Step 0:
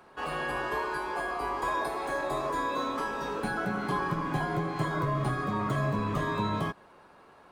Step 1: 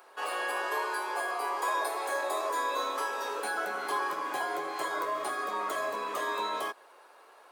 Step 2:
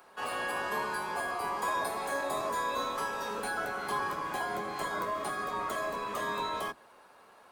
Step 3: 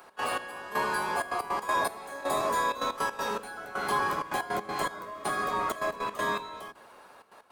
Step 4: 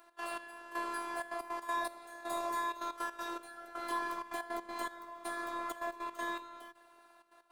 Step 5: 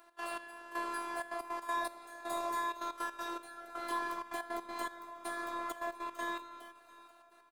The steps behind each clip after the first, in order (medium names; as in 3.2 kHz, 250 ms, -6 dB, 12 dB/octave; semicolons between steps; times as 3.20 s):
high-pass 410 Hz 24 dB/octave; treble shelf 6.4 kHz +11.5 dB
octave divider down 1 oct, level 0 dB; trim -1.5 dB
trance gate "x.xx....xxxxx.x." 160 bpm -12 dB; trim +5 dB
robot voice 341 Hz; trim -7 dB
feedback delay 697 ms, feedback 51%, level -21 dB